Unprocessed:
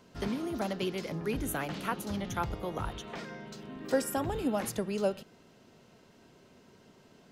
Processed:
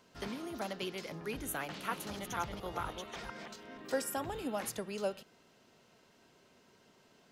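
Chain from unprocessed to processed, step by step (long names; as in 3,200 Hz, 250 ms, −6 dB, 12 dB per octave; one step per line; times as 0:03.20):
0:01.66–0:03.82: delay that plays each chunk backwards 235 ms, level −4 dB
low-shelf EQ 460 Hz −8.5 dB
level −2 dB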